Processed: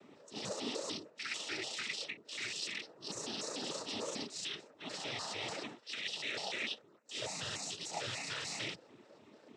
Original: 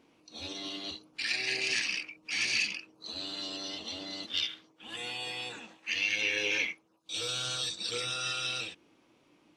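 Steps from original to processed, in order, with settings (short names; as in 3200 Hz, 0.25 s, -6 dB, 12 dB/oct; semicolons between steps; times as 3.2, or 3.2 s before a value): trilling pitch shifter +8 st, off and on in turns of 0.148 s; low shelf 140 Hz -7.5 dB; reverse; compressor 5:1, threshold -41 dBFS, peak gain reduction 13.5 dB; reverse; tilt -2 dB/oct; noise vocoder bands 12; gain +6 dB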